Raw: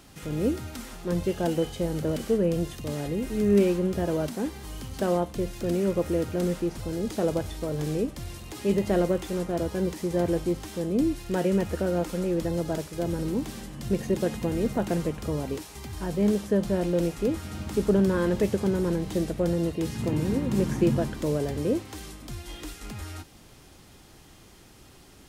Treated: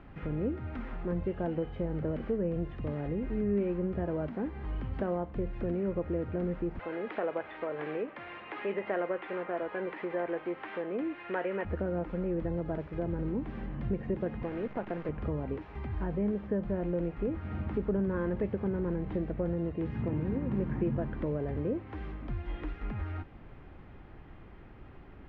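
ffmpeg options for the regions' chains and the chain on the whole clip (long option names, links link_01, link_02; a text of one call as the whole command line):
ffmpeg -i in.wav -filter_complex "[0:a]asettb=1/sr,asplit=3[link_01][link_02][link_03];[link_01]atrim=end=6.794[link_04];[link_02]atrim=start=6.79:end=11.65,asetpts=PTS-STARTPTS,afade=type=in:duration=0.004:curve=qsin,afade=type=out:start_time=4.856:duration=0.004:curve=qsin,highpass=420,lowpass=3600,equalizer=frequency=2300:width=0.43:gain=9.5[link_05];[link_03]atrim=start=11.646[link_06];[link_04][link_05]acrossfade=duration=0.004:curve1=hsin:curve2=qsin[link_07];[link_07][link_06]acrossfade=duration=0.004:curve1=qsin:curve2=hsin,asettb=1/sr,asplit=3[link_08][link_09][link_10];[link_08]atrim=end=14.434[link_11];[link_09]atrim=start=14.43:end=15.09,asetpts=PTS-STARTPTS,afade=type=in:duration=0.004:curve=qsin,afade=type=out:start_time=0.656:duration=0.004:curve=qsin,highpass=frequency=460:poles=1,acrusher=bits=7:dc=4:mix=0:aa=0.000001[link_12];[link_10]atrim=start=15.086[link_13];[link_11][link_12]acrossfade=duration=0.004:curve1=hsin:curve2=qsin[link_14];[link_14][link_13]acrossfade=duration=0.004:curve1=qsin:curve2=hsin,lowpass=frequency=2200:width=0.5412,lowpass=frequency=2200:width=1.3066,acompressor=threshold=-35dB:ratio=2,lowshelf=frequency=67:gain=8.5" out.wav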